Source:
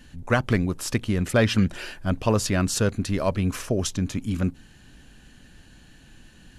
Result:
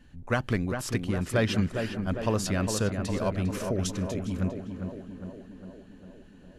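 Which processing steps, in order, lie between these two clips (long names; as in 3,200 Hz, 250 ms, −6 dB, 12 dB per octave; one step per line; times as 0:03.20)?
tape delay 405 ms, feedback 72%, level −4 dB, low-pass 1,700 Hz
one half of a high-frequency compander decoder only
level −5.5 dB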